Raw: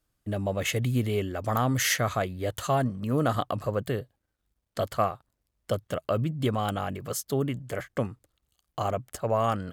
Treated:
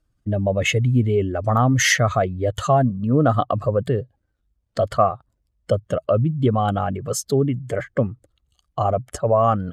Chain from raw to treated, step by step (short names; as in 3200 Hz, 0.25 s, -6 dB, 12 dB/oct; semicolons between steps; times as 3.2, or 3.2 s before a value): spectral contrast raised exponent 1.5; LPF 9100 Hz 12 dB/oct; gain +8.5 dB